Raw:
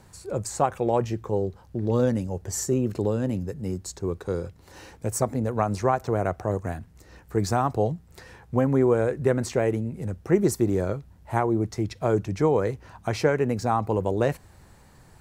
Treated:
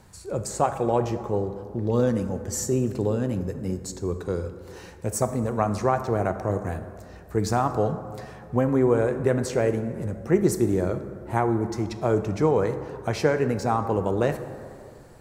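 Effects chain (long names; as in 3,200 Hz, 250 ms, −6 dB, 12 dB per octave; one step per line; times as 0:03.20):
dense smooth reverb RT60 2.3 s, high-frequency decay 0.4×, DRR 8.5 dB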